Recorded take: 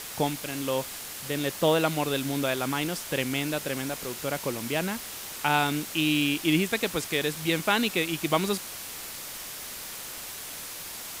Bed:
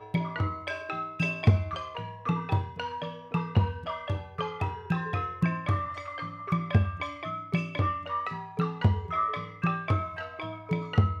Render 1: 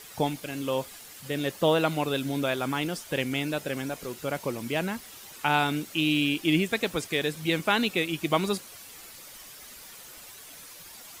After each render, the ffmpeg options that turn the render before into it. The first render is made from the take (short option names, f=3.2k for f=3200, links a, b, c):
-af "afftdn=nr=10:nf=-39"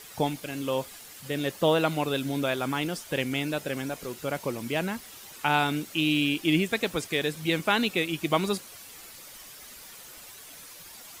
-af anull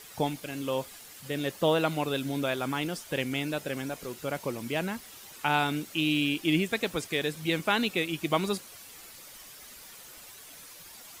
-af "volume=-2dB"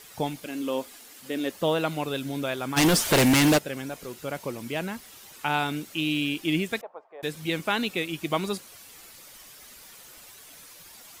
-filter_complex "[0:a]asettb=1/sr,asplit=3[a][b][c];[a]atrim=end=0.454[d];[b]atrim=start=0.45:end=1.52,asetpts=PTS-STARTPTS,afade=t=in:d=0.004:c=qsin,afade=t=out:st=1.066:d=0.004:c=qsin,lowshelf=f=200:t=q:w=3:g=-6.5[e];[c]atrim=start=1.516[f];[d][e]acrossfade=d=0.004:c1=hsin:c2=qsin[g];[g][f]acrossfade=d=0.004:c1=qsin:c2=hsin,asplit=3[h][i][j];[h]afade=t=out:st=2.76:d=0.02[k];[i]aeval=exprs='0.178*sin(PI/2*5.01*val(0)/0.178)':c=same,afade=t=in:st=2.76:d=0.02,afade=t=out:st=3.57:d=0.02[l];[j]afade=t=in:st=3.57:d=0.02[m];[k][l][m]amix=inputs=3:normalize=0,asettb=1/sr,asplit=3[n][o][p];[n]atrim=end=6.814[q];[o]atrim=start=6.81:end=7.23,asetpts=PTS-STARTPTS,afade=t=in:d=0.004:c=qsin,afade=t=out:st=0.416:d=0.004:c=qsin,asuperpass=centerf=780:order=4:qfactor=1.8[r];[p]atrim=start=7.226[s];[q][r]acrossfade=d=0.004:c1=hsin:c2=qsin[t];[t][s]acrossfade=d=0.004:c1=qsin:c2=hsin"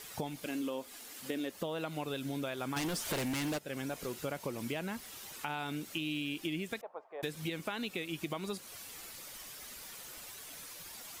-af "alimiter=limit=-20.5dB:level=0:latency=1:release=439,acompressor=threshold=-34dB:ratio=6"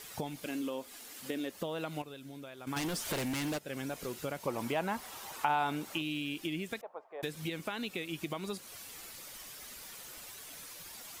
-filter_complex "[0:a]asettb=1/sr,asplit=3[a][b][c];[a]atrim=end=4.474[d];[b]atrim=start=4.47:end=6.02,asetpts=PTS-STARTPTS,afade=t=in:d=0.004:c=qsin,afade=t=out:st=1.546:d=0.004:c=qsin,equalizer=f=880:t=o:w=1.4:g=11.5[e];[c]atrim=start=6.016[f];[d][e]acrossfade=d=0.004:c1=hsin:c2=qsin[g];[g][f]acrossfade=d=0.004:c1=qsin:c2=hsin,asplit=3[h][i][j];[h]atrim=end=2.022[k];[i]atrim=start=2.018:end=2.672,asetpts=PTS-STARTPTS,volume=-9.5dB[l];[j]atrim=start=2.668[m];[k][l]acrossfade=d=0.004:c1=hsin:c2=hsin[n];[n][m]acrossfade=d=0.004:c1=hsin:c2=hsin"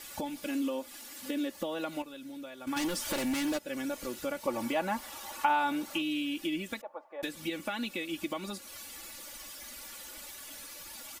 -af "aecho=1:1:3.5:0.83"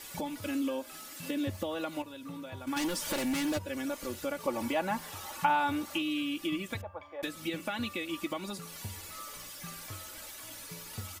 -filter_complex "[1:a]volume=-19.5dB[a];[0:a][a]amix=inputs=2:normalize=0"